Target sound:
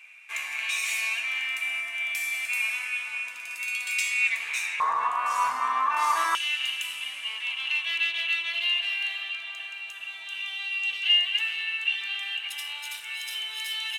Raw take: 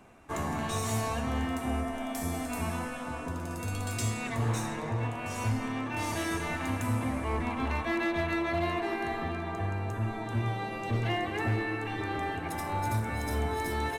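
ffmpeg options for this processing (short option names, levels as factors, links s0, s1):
-af "asetnsamples=n=441:p=0,asendcmd='4.8 highpass f 1100;6.35 highpass f 2900',highpass=f=2400:t=q:w=11,volume=1.41"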